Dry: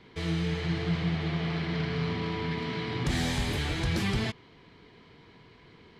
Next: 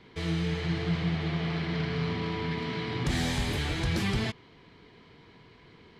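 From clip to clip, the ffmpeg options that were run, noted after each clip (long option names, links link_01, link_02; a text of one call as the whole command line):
ffmpeg -i in.wav -af anull out.wav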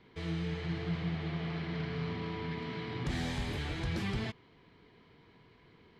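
ffmpeg -i in.wav -af "highshelf=frequency=5600:gain=-8.5,volume=-6dB" out.wav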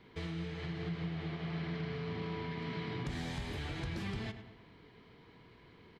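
ffmpeg -i in.wav -filter_complex "[0:a]acompressor=threshold=-38dB:ratio=6,asplit=2[link_01][link_02];[link_02]adelay=103,lowpass=frequency=3400:poles=1,volume=-10dB,asplit=2[link_03][link_04];[link_04]adelay=103,lowpass=frequency=3400:poles=1,volume=0.53,asplit=2[link_05][link_06];[link_06]adelay=103,lowpass=frequency=3400:poles=1,volume=0.53,asplit=2[link_07][link_08];[link_08]adelay=103,lowpass=frequency=3400:poles=1,volume=0.53,asplit=2[link_09][link_10];[link_10]adelay=103,lowpass=frequency=3400:poles=1,volume=0.53,asplit=2[link_11][link_12];[link_12]adelay=103,lowpass=frequency=3400:poles=1,volume=0.53[link_13];[link_03][link_05][link_07][link_09][link_11][link_13]amix=inputs=6:normalize=0[link_14];[link_01][link_14]amix=inputs=2:normalize=0,volume=1.5dB" out.wav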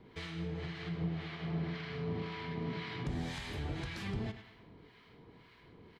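ffmpeg -i in.wav -filter_complex "[0:a]acrossover=split=940[link_01][link_02];[link_01]aeval=exprs='val(0)*(1-0.7/2+0.7/2*cos(2*PI*1.9*n/s))':channel_layout=same[link_03];[link_02]aeval=exprs='val(0)*(1-0.7/2-0.7/2*cos(2*PI*1.9*n/s))':channel_layout=same[link_04];[link_03][link_04]amix=inputs=2:normalize=0,volume=3.5dB" out.wav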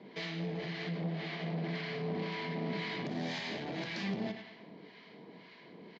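ffmpeg -i in.wav -af "aresample=16000,asoftclip=type=tanh:threshold=-35.5dB,aresample=44100,highpass=frequency=180:width=0.5412,highpass=frequency=180:width=1.3066,equalizer=frequency=190:width_type=q:width=4:gain=6,equalizer=frequency=630:width_type=q:width=4:gain=7,equalizer=frequency=1300:width_type=q:width=4:gain=-7,equalizer=frequency=2000:width_type=q:width=4:gain=3,equalizer=frequency=4600:width_type=q:width=4:gain=4,lowpass=frequency=6200:width=0.5412,lowpass=frequency=6200:width=1.3066,volume=5dB" out.wav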